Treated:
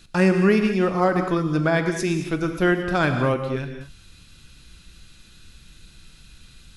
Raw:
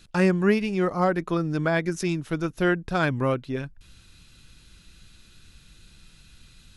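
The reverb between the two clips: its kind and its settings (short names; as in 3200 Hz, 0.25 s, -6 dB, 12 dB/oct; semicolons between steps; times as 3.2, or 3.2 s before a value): non-linear reverb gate 0.25 s flat, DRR 5.5 dB; gain +2.5 dB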